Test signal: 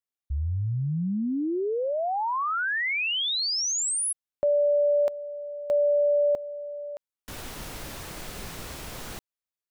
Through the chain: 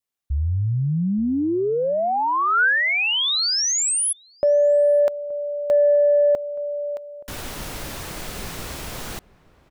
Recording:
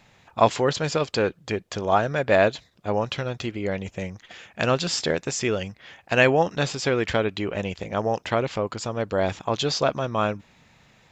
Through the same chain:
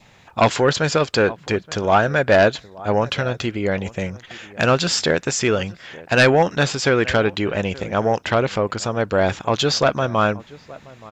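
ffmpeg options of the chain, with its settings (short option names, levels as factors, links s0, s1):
-filter_complex "[0:a]asplit=2[s0][s1];[s1]adelay=874.6,volume=0.0891,highshelf=f=4000:g=-19.7[s2];[s0][s2]amix=inputs=2:normalize=0,aeval=exprs='0.841*sin(PI/2*2.51*val(0)/0.841)':c=same,adynamicequalizer=threshold=0.0251:dfrequency=1500:dqfactor=3.5:tfrequency=1500:tqfactor=3.5:attack=5:release=100:ratio=0.375:range=2.5:mode=boostabove:tftype=bell,volume=0.501"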